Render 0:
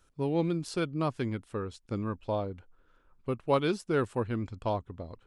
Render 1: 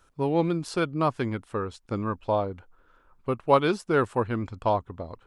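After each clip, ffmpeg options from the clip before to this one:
ffmpeg -i in.wav -af "equalizer=frequency=1000:width=0.73:gain=6.5,volume=2.5dB" out.wav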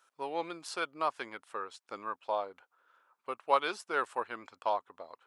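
ffmpeg -i in.wav -af "highpass=730,volume=-3.5dB" out.wav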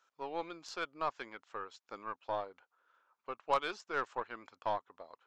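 ffmpeg -i in.wav -af "aresample=16000,aresample=44100,aeval=exprs='0.237*(cos(1*acos(clip(val(0)/0.237,-1,1)))-cos(1*PI/2))+0.0168*(cos(5*acos(clip(val(0)/0.237,-1,1)))-cos(5*PI/2))+0.00944*(cos(6*acos(clip(val(0)/0.237,-1,1)))-cos(6*PI/2))+0.00944*(cos(7*acos(clip(val(0)/0.237,-1,1)))-cos(7*PI/2))+0.015*(cos(8*acos(clip(val(0)/0.237,-1,1)))-cos(8*PI/2))':channel_layout=same,volume=-5dB" out.wav

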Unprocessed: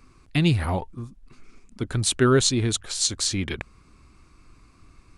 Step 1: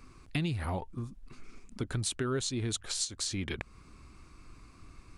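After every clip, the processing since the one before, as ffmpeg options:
ffmpeg -i in.wav -af "alimiter=limit=-13dB:level=0:latency=1:release=350,acompressor=threshold=-34dB:ratio=2.5" out.wav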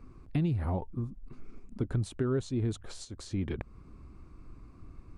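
ffmpeg -i in.wav -af "tiltshelf=frequency=1400:gain=9.5,volume=-5.5dB" out.wav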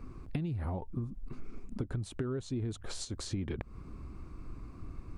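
ffmpeg -i in.wav -af "acompressor=threshold=-37dB:ratio=8,volume=5dB" out.wav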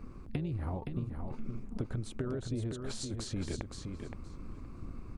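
ffmpeg -i in.wav -filter_complex "[0:a]tremolo=f=220:d=0.519,asplit=2[link_01][link_02];[link_02]aecho=0:1:519|1038|1557:0.501|0.0802|0.0128[link_03];[link_01][link_03]amix=inputs=2:normalize=0,volume=1.5dB" out.wav

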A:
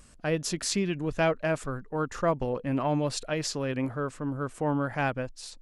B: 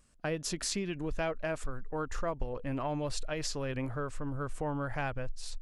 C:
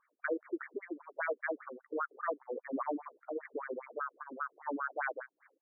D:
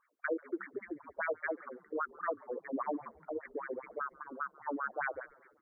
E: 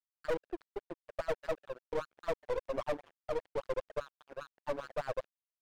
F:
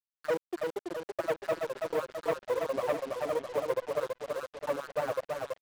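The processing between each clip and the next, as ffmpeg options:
ffmpeg -i in.wav -af "agate=range=-12dB:threshold=-46dB:ratio=16:detection=peak,asubboost=boost=11:cutoff=61,acompressor=threshold=-33dB:ratio=2.5" out.wav
ffmpeg -i in.wav -af "equalizer=frequency=5300:width=0.72:gain=13,afftfilt=real='re*between(b*sr/1024,330*pow(1700/330,0.5+0.5*sin(2*PI*5*pts/sr))/1.41,330*pow(1700/330,0.5+0.5*sin(2*PI*5*pts/sr))*1.41)':imag='im*between(b*sr/1024,330*pow(1700/330,0.5+0.5*sin(2*PI*5*pts/sr))/1.41,330*pow(1700/330,0.5+0.5*sin(2*PI*5*pts/sr))*1.41)':win_size=1024:overlap=0.75,volume=3dB" out.wav
ffmpeg -i in.wav -filter_complex "[0:a]asplit=5[link_01][link_02][link_03][link_04][link_05];[link_02]adelay=140,afreqshift=-66,volume=-24dB[link_06];[link_03]adelay=280,afreqshift=-132,volume=-28.3dB[link_07];[link_04]adelay=420,afreqshift=-198,volume=-32.6dB[link_08];[link_05]adelay=560,afreqshift=-264,volume=-36.9dB[link_09];[link_01][link_06][link_07][link_08][link_09]amix=inputs=5:normalize=0" out.wav
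ffmpeg -i in.wav -af "bandpass=frequency=550:width_type=q:width=4.5:csg=0,aeval=exprs='sgn(val(0))*max(abs(val(0))-0.00158,0)':channel_layout=same,aeval=exprs='(tanh(158*val(0)+0.65)-tanh(0.65))/158':channel_layout=same,volume=15.5dB" out.wav
ffmpeg -i in.wav -filter_complex "[0:a]highpass=140,lowpass=3700,asplit=2[link_01][link_02];[link_02]aecho=0:1:330|660|990|1320|1650|1980|2310:0.631|0.347|0.191|0.105|0.0577|0.0318|0.0175[link_03];[link_01][link_03]amix=inputs=2:normalize=0,acrusher=bits=7:mix=0:aa=0.5,volume=4dB" out.wav

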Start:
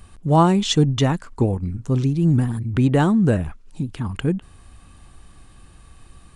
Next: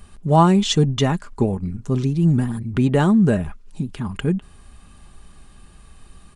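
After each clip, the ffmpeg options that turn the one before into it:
ffmpeg -i in.wav -af "aecho=1:1:4.9:0.37" out.wav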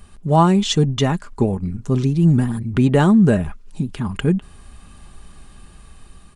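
ffmpeg -i in.wav -af "dynaudnorm=framelen=370:gausssize=5:maxgain=3.5dB" out.wav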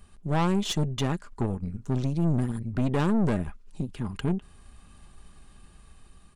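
ffmpeg -i in.wav -af "aeval=exprs='(tanh(6.31*val(0)+0.7)-tanh(0.7))/6.31':channel_layout=same,volume=-5dB" out.wav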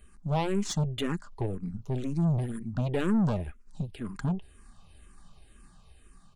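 ffmpeg -i in.wav -filter_complex "[0:a]asplit=2[link_01][link_02];[link_02]afreqshift=-2[link_03];[link_01][link_03]amix=inputs=2:normalize=1" out.wav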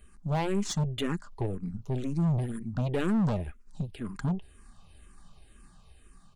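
ffmpeg -i in.wav -af "volume=21.5dB,asoftclip=hard,volume=-21.5dB" out.wav

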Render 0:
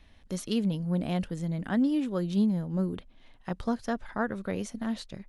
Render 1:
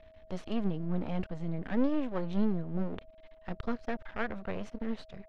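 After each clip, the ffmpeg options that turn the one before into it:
ffmpeg -i in.wav -af "aeval=exprs='max(val(0),0)':channel_layout=same,aeval=exprs='val(0)+0.00141*sin(2*PI*640*n/s)':channel_layout=same,lowpass=3000,volume=1.5dB" out.wav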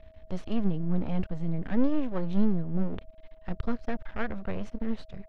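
ffmpeg -i in.wav -af "lowshelf=frequency=180:gain=9" out.wav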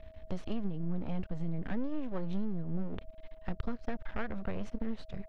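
ffmpeg -i in.wav -af "acompressor=threshold=-30dB:ratio=5,volume=1dB" out.wav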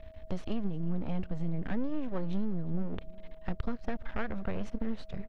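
ffmpeg -i in.wav -af "aecho=1:1:359|718|1077:0.0708|0.0276|0.0108,volume=2dB" out.wav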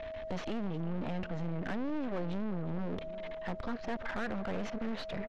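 ffmpeg -i in.wav -filter_complex "[0:a]aresample=16000,asoftclip=type=tanh:threshold=-27dB,aresample=44100,asplit=2[link_01][link_02];[link_02]highpass=frequency=720:poles=1,volume=22dB,asoftclip=type=tanh:threshold=-27dB[link_03];[link_01][link_03]amix=inputs=2:normalize=0,lowpass=frequency=2600:poles=1,volume=-6dB" out.wav

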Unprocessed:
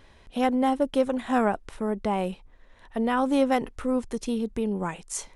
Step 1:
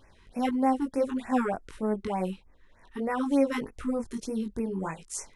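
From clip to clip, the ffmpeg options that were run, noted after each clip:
ffmpeg -i in.wav -af "flanger=delay=18.5:depth=3.4:speed=1.6,afftfilt=real='re*(1-between(b*sr/1024,560*pow(3800/560,0.5+0.5*sin(2*PI*3.3*pts/sr))/1.41,560*pow(3800/560,0.5+0.5*sin(2*PI*3.3*pts/sr))*1.41))':imag='im*(1-between(b*sr/1024,560*pow(3800/560,0.5+0.5*sin(2*PI*3.3*pts/sr))/1.41,560*pow(3800/560,0.5+0.5*sin(2*PI*3.3*pts/sr))*1.41))':win_size=1024:overlap=0.75" out.wav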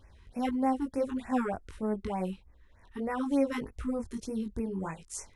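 ffmpeg -i in.wav -af "equalizer=frequency=67:width_type=o:width=1.3:gain=13,volume=-4dB" out.wav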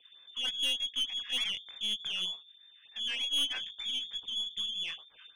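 ffmpeg -i in.wav -af "bandreject=frequency=50:width_type=h:width=6,bandreject=frequency=100:width_type=h:width=6,bandreject=frequency=150:width_type=h:width=6,bandreject=frequency=200:width_type=h:width=6,bandreject=frequency=250:width_type=h:width=6,bandreject=frequency=300:width_type=h:width=6,bandreject=frequency=350:width_type=h:width=6,bandreject=frequency=400:width_type=h:width=6,bandreject=frequency=450:width_type=h:width=6,lowpass=frequency=3100:width_type=q:width=0.5098,lowpass=frequency=3100:width_type=q:width=0.6013,lowpass=frequency=3100:width_type=q:width=0.9,lowpass=frequency=3100:width_type=q:width=2.563,afreqshift=-3600,aeval=exprs='(tanh(17.8*val(0)+0.3)-tanh(0.3))/17.8':channel_layout=same" out.wav

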